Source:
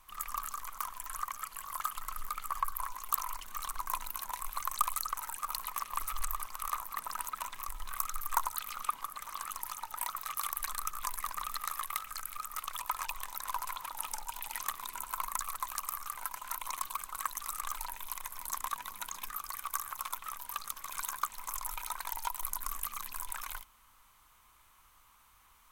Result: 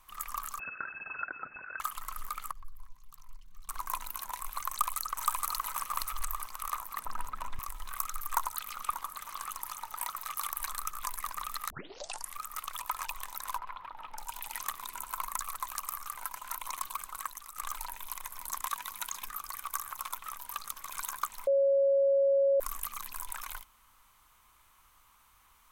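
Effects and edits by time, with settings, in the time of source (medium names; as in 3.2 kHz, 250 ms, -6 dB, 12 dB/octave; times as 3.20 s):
0.59–1.80 s: frequency inversion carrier 2.6 kHz
2.51–3.69 s: FFT filter 150 Hz 0 dB, 330 Hz -21 dB, 1.2 kHz -26 dB, 4.8 kHz -17 dB, 9 kHz -25 dB
4.70–5.55 s: echo throw 470 ms, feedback 15%, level -0.5 dB
7.05–7.59 s: tilt EQ -3 dB/octave
8.31–10.81 s: delay 589 ms -12 dB
11.70 s: tape start 0.68 s
13.58–14.18 s: distance through air 400 m
17.09–17.56 s: fade out, to -12.5 dB
18.62–19.22 s: tilt shelf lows -4 dB, about 850 Hz
21.47–22.60 s: bleep 552 Hz -22 dBFS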